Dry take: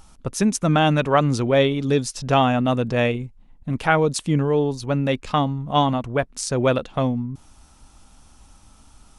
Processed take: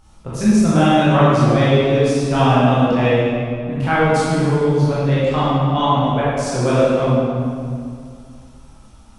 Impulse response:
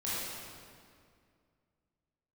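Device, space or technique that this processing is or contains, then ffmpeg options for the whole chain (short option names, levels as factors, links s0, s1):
swimming-pool hall: -filter_complex "[1:a]atrim=start_sample=2205[s0];[0:a][s0]afir=irnorm=-1:irlink=0,highshelf=f=4800:g=-6,volume=0.891"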